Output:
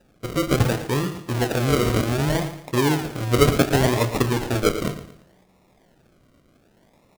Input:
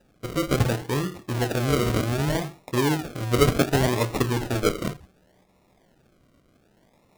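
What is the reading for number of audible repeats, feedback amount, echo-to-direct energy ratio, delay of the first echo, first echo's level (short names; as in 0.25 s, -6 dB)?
3, 37%, -12.0 dB, 0.114 s, -12.5 dB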